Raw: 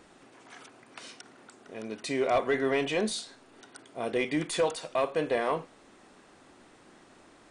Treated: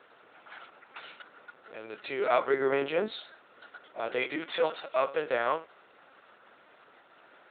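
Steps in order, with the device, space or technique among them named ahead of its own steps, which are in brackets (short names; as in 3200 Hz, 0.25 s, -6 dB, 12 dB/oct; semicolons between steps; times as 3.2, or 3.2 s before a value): 2.5–3.08 RIAA curve playback; talking toy (LPC vocoder at 8 kHz pitch kept; HPF 430 Hz 12 dB/oct; bell 1400 Hz +8 dB 0.29 oct); gain +1 dB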